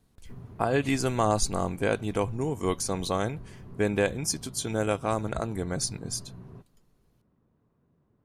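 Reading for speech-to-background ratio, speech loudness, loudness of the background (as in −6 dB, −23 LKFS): 17.5 dB, −29.0 LKFS, −46.5 LKFS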